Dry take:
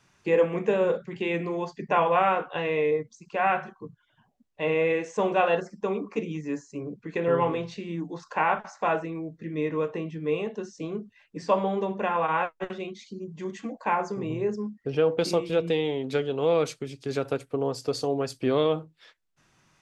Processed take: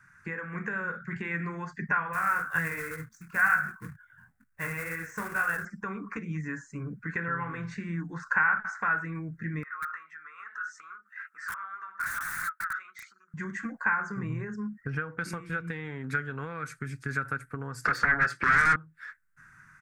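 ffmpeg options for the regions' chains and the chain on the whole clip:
-filter_complex "[0:a]asettb=1/sr,asplit=3[a][b][c];[a]atrim=end=2.134[d];[b]atrim=start=2.13:end=5.65,asetpts=PTS-STARTPTS,afade=t=in:d=0.004:c=qsin,afade=t=out:st=3.516:d=0.004:c=qsin,flanger=delay=17.5:depth=6.6:speed=2.1,equalizer=f=80:w=1.9:g=13,acrusher=bits=3:mode=log:mix=0:aa=0.000001[e];[c]atrim=start=5.646[f];[d][e]acrossfade=d=0.004:c1=hsin:c2=qsin[g];[g][f]acrossfade=d=0.004:c1=qsin:c2=hsin,asettb=1/sr,asplit=3[h][i][j];[h]atrim=end=9.634[k];[i]atrim=start=9.63:end=13.34,asetpts=PTS-STARTPTS,afade=t=in:d=0.004:c=qsin,afade=t=out:st=3.706:d=0.004:c=qsin,acompressor=threshold=-43dB:ratio=5:attack=3.2:release=140:knee=1:detection=peak,highpass=f=1.3k:t=q:w=10,aeval=exprs='(mod(75*val(0)+1,2)-1)/75':c=same[l];[j]atrim=start=13.336[m];[k][l]acrossfade=d=0.004:c1=hsin:c2=qsin[n];[n][m]acrossfade=d=0.004:c1=qsin:c2=hsin,asettb=1/sr,asplit=3[o][p][q];[o]atrim=end=17.854[r];[p]atrim=start=17.85:end=18.76,asetpts=PTS-STARTPTS,afade=t=in:d=0.004:c=qsin,afade=t=out:st=0.906:d=0.004:c=qsin,highpass=320,lowpass=3.5k,aecho=1:1:5.8:0.72,atrim=end_sample=40131,aeval=exprs='0.211*sin(PI/2*5.62*val(0)/0.211)':c=same[s];[q]atrim=start=18.756[t];[r][s]acrossfade=d=0.004:c1=hsin:c2=qsin[u];[u][t]acrossfade=d=0.004:c1=qsin:c2=hsin,acompressor=threshold=-30dB:ratio=10,firequalizer=gain_entry='entry(150,0);entry(350,-14);entry(630,-18);entry(1500,14);entry(3000,-18);entry(8500,-2)':delay=0.05:min_phase=1,dynaudnorm=f=130:g=5:m=4dB,volume=2dB"

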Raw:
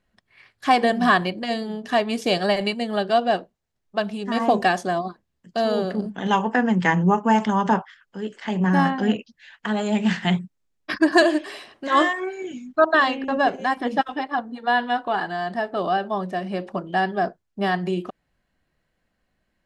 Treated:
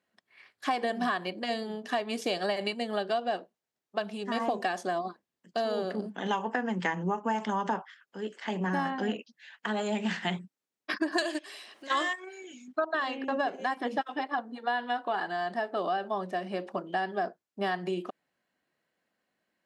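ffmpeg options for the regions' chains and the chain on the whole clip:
-filter_complex "[0:a]asettb=1/sr,asplit=3[a][b][c];[a]atrim=end=11.184[d];[b]atrim=start=11.18:end=12.68,asetpts=PTS-STARTPTS,afade=t=in:d=0.004:c=qsin,afade=t=out:st=1.496:d=0.004:c=qsin,highshelf=f=2k:g=11.5,acompressor=mode=upward:threshold=-18dB:ratio=2.5:attack=3.2:release=140:knee=2.83:detection=peak,agate=range=-15dB:threshold=-22dB:ratio=16:release=100:detection=peak[e];[c]atrim=start=12.676[f];[d][e]acrossfade=d=0.004:c1=hsin:c2=qsin[g];[g][f]acrossfade=d=0.004:c1=qsin:c2=hsin,highpass=250,acompressor=threshold=-22dB:ratio=6,volume=-4dB"

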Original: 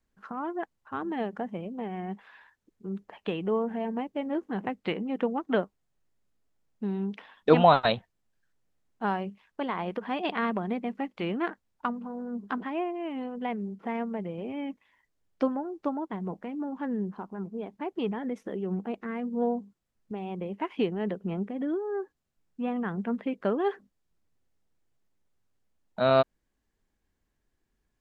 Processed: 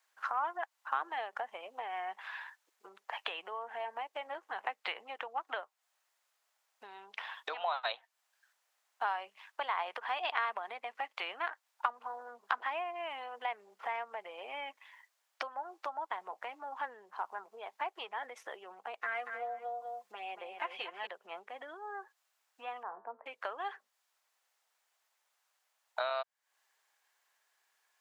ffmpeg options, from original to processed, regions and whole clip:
-filter_complex "[0:a]asettb=1/sr,asplit=3[a][b][c];[a]atrim=end=19.014[d];[b]atrim=start=19.01:end=21.07,asetpts=PTS-STARTPTS,afade=t=in:d=0.004:c=qsin,afade=t=out:st=2.056:d=0.004:c=qsin,bandreject=f=930:w=14,aecho=1:1:5.7:0.73,atrim=end_sample=90846,aecho=1:1:235|430:0.501|0.168,atrim=end_sample=90846[e];[c]atrim=start=21.066[f];[d][e]acrossfade=d=0.004:c1=hsin:c2=qsin[g];[g][f]acrossfade=d=0.004:c1=qsin:c2=hsin,asettb=1/sr,asplit=3[h][i][j];[h]atrim=end=22.834[k];[i]atrim=start=22.83:end=23.26,asetpts=PTS-STARTPTS,afade=t=in:d=0.004:c=qsin,afade=t=out:st=0.426:d=0.004:c=qsin,lowpass=f=1k:w=0.5412,lowpass=f=1k:w=1.3066,bandreject=f=113:t=h:w=4,bandreject=f=226:t=h:w=4,bandreject=f=339:t=h:w=4,bandreject=f=452:t=h:w=4,bandreject=f=565:t=h:w=4,bandreject=f=678:t=h:w=4,bandreject=f=791:t=h:w=4,bandreject=f=904:t=h:w=4,bandreject=f=1.017k:t=h:w=4,bandreject=f=1.13k:t=h:w=4,bandreject=f=1.243k:t=h:w=4,bandreject=f=1.356k:t=h:w=4,bandreject=f=1.469k:t=h:w=4,bandreject=f=1.582k:t=h:w=4,bandreject=f=1.695k:t=h:w=4,bandreject=f=1.808k:t=h:w=4,bandreject=f=1.921k:t=h:w=4,bandreject=f=2.034k:t=h:w=4,bandreject=f=2.147k:t=h:w=4,bandreject=f=2.26k:t=h:w=4,bandreject=f=2.373k:t=h:w=4,bandreject=f=2.486k:t=h:w=4,bandreject=f=2.599k:t=h:w=4,bandreject=f=2.712k:t=h:w=4,bandreject=f=2.825k:t=h:w=4,bandreject=f=2.938k:t=h:w=4,bandreject=f=3.051k:t=h:w=4,bandreject=f=3.164k:t=h:w=4,bandreject=f=3.277k:t=h:w=4,bandreject=f=3.39k:t=h:w=4,bandreject=f=3.503k:t=h:w=4,bandreject=f=3.616k:t=h:w=4,bandreject=f=3.729k:t=h:w=4,bandreject=f=3.842k:t=h:w=4,bandreject=f=3.955k:t=h:w=4,bandreject=f=4.068k:t=h:w=4,bandreject=f=4.181k:t=h:w=4,bandreject=f=4.294k:t=h:w=4,bandreject=f=4.407k:t=h:w=4[l];[j]atrim=start=23.256[m];[k][l]acrossfade=d=0.004:c1=hsin:c2=qsin[n];[n][m]acrossfade=d=0.004:c1=qsin:c2=hsin,acompressor=threshold=-37dB:ratio=10,highpass=f=750:w=0.5412,highpass=f=750:w=1.3066,volume=10dB"

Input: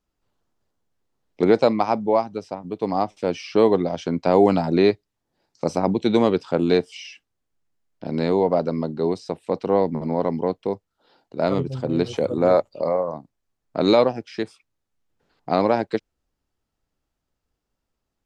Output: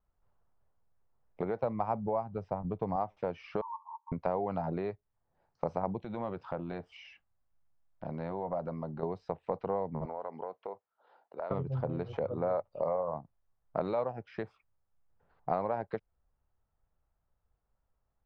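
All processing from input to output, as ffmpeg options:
-filter_complex "[0:a]asettb=1/sr,asplit=3[a][b][c];[a]atrim=end=1.634[d];[b]atrim=start=1.63:end=2.96,asetpts=PTS-STARTPTS,afade=t=in:d=0.004:c=qsin,afade=t=out:st=1.326:d=0.004:c=qsin,lowshelf=f=220:g=10.5,bandreject=f=4.1k:w=25[e];[c]atrim=start=2.956[f];[d][e]acrossfade=d=0.004:c1=hsin:c2=qsin[g];[g][f]acrossfade=d=0.004:c1=qsin:c2=hsin,asettb=1/sr,asplit=3[h][i][j];[h]atrim=end=3.614[k];[i]atrim=start=3.61:end=4.12,asetpts=PTS-STARTPTS,afade=t=in:d=0.004:c=qsin,afade=t=out:st=0.506:d=0.004:c=qsin,asuperpass=centerf=980:order=8:qfactor=4.8,aecho=1:1:4.5:0.5,atrim=end_sample=22491[l];[j]atrim=start=4.116[m];[k][l]acrossfade=d=0.004:c1=hsin:c2=qsin[n];[n][m]acrossfade=d=0.004:c1=qsin:c2=hsin,asettb=1/sr,asplit=3[o][p][q];[o]atrim=end=6.004[r];[p]atrim=start=6:end=9.03,asetpts=PTS-STARTPTS,afade=t=in:d=0.004:c=qsin,afade=t=out:st=3.026:d=0.004:c=qsin,bandreject=f=440:w=6,acompressor=threshold=-31dB:ratio=2.5:attack=3.2:release=140:knee=1:detection=peak[s];[q]atrim=start=9.026[t];[r][s]acrossfade=d=0.004:c1=hsin:c2=qsin[u];[u][t]acrossfade=d=0.004:c1=qsin:c2=hsin,asettb=1/sr,asplit=3[v][w][x];[v]atrim=end=10.054[y];[w]atrim=start=10.05:end=11.51,asetpts=PTS-STARTPTS,afade=t=in:d=0.004:c=qsin,afade=t=out:st=1.456:d=0.004:c=qsin,highpass=420,lowpass=5.6k,acompressor=threshold=-31dB:ratio=8:attack=3.2:release=140:knee=1:detection=peak[z];[x]atrim=start=11.506[aa];[y][z]acrossfade=d=0.004:c1=hsin:c2=qsin[ab];[ab][aa]acrossfade=d=0.004:c1=qsin:c2=hsin,acompressor=threshold=-25dB:ratio=6,lowpass=1.1k,equalizer=f=290:t=o:w=1.4:g=-15,volume=3dB"

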